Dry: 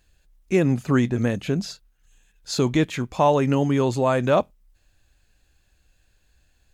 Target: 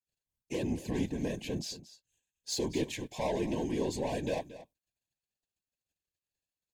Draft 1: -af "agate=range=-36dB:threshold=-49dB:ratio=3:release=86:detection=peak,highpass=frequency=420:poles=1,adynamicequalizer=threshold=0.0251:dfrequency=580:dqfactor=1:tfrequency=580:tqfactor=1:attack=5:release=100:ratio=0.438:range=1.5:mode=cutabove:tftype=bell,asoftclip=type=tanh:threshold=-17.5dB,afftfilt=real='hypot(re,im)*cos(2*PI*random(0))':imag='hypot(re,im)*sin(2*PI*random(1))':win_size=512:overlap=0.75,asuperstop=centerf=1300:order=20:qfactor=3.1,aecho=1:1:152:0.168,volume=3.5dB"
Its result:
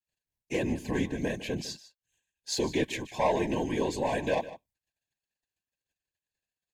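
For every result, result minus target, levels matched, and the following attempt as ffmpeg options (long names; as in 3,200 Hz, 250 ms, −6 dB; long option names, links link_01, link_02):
echo 76 ms early; 2,000 Hz band +4.5 dB; soft clipping: distortion −6 dB
-af "agate=range=-36dB:threshold=-49dB:ratio=3:release=86:detection=peak,highpass=frequency=420:poles=1,adynamicequalizer=threshold=0.0251:dfrequency=580:dqfactor=1:tfrequency=580:tqfactor=1:attack=5:release=100:ratio=0.438:range=1.5:mode=cutabove:tftype=bell,asoftclip=type=tanh:threshold=-17.5dB,afftfilt=real='hypot(re,im)*cos(2*PI*random(0))':imag='hypot(re,im)*sin(2*PI*random(1))':win_size=512:overlap=0.75,asuperstop=centerf=1300:order=20:qfactor=3.1,aecho=1:1:228:0.168,volume=3.5dB"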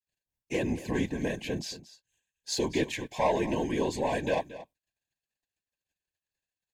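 2,000 Hz band +4.5 dB; soft clipping: distortion −6 dB
-af "agate=range=-36dB:threshold=-49dB:ratio=3:release=86:detection=peak,highpass=frequency=420:poles=1,adynamicequalizer=threshold=0.0251:dfrequency=580:dqfactor=1:tfrequency=580:tqfactor=1:attack=5:release=100:ratio=0.438:range=1.5:mode=cutabove:tftype=bell,asoftclip=type=tanh:threshold=-17.5dB,afftfilt=real='hypot(re,im)*cos(2*PI*random(0))':imag='hypot(re,im)*sin(2*PI*random(1))':win_size=512:overlap=0.75,asuperstop=centerf=1300:order=20:qfactor=3.1,equalizer=frequency=1500:width_type=o:width=1.6:gain=-9,aecho=1:1:228:0.168,volume=3.5dB"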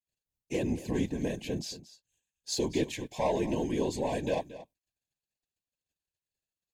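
soft clipping: distortion −6 dB
-af "agate=range=-36dB:threshold=-49dB:ratio=3:release=86:detection=peak,highpass=frequency=420:poles=1,adynamicequalizer=threshold=0.0251:dfrequency=580:dqfactor=1:tfrequency=580:tqfactor=1:attack=5:release=100:ratio=0.438:range=1.5:mode=cutabove:tftype=bell,asoftclip=type=tanh:threshold=-24dB,afftfilt=real='hypot(re,im)*cos(2*PI*random(0))':imag='hypot(re,im)*sin(2*PI*random(1))':win_size=512:overlap=0.75,asuperstop=centerf=1300:order=20:qfactor=3.1,equalizer=frequency=1500:width_type=o:width=1.6:gain=-9,aecho=1:1:228:0.168,volume=3.5dB"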